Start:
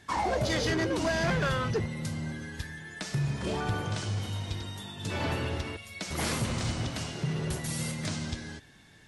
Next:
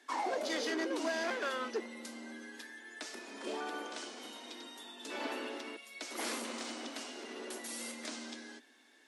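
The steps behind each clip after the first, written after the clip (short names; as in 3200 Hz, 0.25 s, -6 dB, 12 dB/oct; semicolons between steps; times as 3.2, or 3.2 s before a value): steep high-pass 230 Hz 96 dB/oct; gain -6 dB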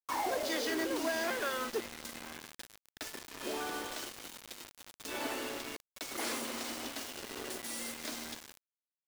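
bit-crush 7-bit; gain +1 dB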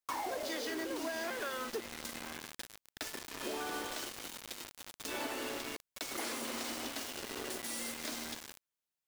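compressor 4:1, threshold -40 dBFS, peak gain reduction 9 dB; gain +3.5 dB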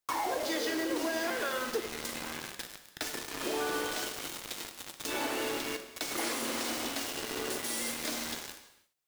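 non-linear reverb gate 0.37 s falling, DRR 6.5 dB; gain +4.5 dB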